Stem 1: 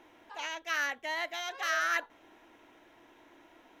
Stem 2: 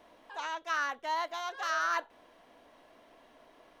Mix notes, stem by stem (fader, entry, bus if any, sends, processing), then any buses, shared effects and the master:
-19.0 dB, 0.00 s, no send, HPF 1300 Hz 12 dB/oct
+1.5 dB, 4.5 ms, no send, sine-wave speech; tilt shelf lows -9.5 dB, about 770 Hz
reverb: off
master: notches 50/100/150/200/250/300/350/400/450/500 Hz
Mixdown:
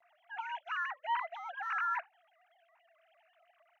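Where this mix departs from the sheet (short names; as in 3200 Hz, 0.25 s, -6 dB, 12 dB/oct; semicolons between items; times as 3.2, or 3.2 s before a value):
stem 1 -19.0 dB -> -28.5 dB; stem 2 +1.5 dB -> -6.5 dB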